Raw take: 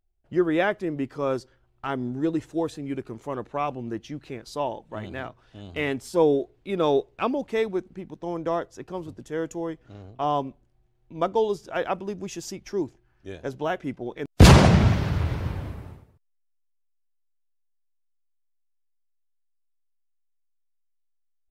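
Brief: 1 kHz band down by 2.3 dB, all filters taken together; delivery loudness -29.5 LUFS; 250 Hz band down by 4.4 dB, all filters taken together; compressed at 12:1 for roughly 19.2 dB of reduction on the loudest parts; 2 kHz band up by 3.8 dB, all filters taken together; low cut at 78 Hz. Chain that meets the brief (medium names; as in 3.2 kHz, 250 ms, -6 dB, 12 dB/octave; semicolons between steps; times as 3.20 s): high-pass 78 Hz; peaking EQ 250 Hz -6.5 dB; peaking EQ 1 kHz -4 dB; peaking EQ 2 kHz +6 dB; compression 12:1, threshold -29 dBFS; trim +6.5 dB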